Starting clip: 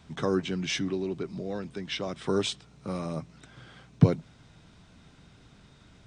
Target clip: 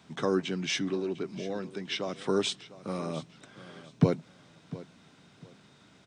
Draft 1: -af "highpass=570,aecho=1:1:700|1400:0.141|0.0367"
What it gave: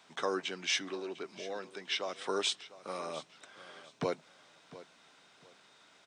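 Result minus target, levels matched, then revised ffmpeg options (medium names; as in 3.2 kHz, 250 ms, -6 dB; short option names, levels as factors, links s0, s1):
125 Hz band -14.0 dB
-af "highpass=170,aecho=1:1:700|1400:0.141|0.0367"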